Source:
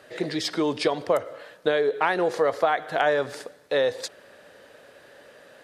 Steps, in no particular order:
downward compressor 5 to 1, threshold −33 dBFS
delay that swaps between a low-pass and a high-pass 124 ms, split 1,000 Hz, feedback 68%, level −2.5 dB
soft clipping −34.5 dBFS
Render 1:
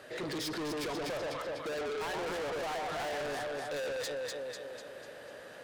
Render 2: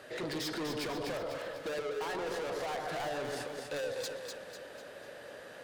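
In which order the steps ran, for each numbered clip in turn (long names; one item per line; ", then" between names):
delay that swaps between a low-pass and a high-pass, then soft clipping, then downward compressor
soft clipping, then delay that swaps between a low-pass and a high-pass, then downward compressor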